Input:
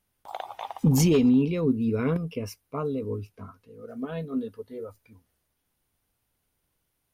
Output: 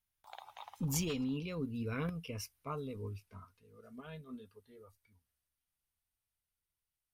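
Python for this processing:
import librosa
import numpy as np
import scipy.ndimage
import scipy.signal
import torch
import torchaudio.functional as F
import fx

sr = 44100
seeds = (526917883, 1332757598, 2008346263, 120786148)

y = fx.doppler_pass(x, sr, speed_mps=15, closest_m=16.0, pass_at_s=2.53)
y = fx.peak_eq(y, sr, hz=340.0, db=-12.0, octaves=2.8)
y = F.gain(torch.from_numpy(y), -2.0).numpy()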